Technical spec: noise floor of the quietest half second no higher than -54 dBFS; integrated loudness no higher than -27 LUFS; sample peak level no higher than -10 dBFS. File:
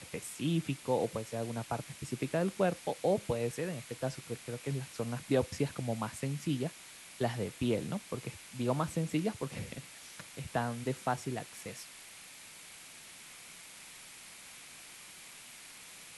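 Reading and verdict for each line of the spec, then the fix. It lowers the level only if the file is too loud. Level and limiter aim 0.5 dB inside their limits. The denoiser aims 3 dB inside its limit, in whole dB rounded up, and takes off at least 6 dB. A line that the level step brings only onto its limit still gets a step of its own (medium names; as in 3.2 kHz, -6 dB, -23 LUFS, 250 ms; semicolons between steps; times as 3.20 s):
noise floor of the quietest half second -52 dBFS: fail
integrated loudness -36.0 LUFS: pass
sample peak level -17.5 dBFS: pass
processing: noise reduction 6 dB, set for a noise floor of -52 dBFS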